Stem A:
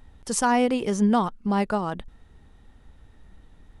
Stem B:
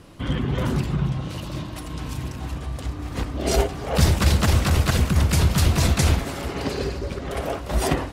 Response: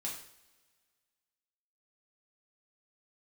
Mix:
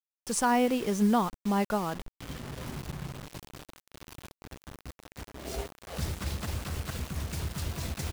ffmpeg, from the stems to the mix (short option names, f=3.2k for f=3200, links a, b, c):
-filter_complex "[0:a]volume=-4dB,asplit=2[a][b];[1:a]aeval=exprs='sgn(val(0))*max(abs(val(0))-0.015,0)':c=same,adelay=2000,volume=-5.5dB[c];[b]apad=whole_len=446429[d];[c][d]sidechaingate=range=-10dB:threshold=-49dB:ratio=16:detection=peak[e];[a][e]amix=inputs=2:normalize=0,acrusher=bits=6:mix=0:aa=0.000001"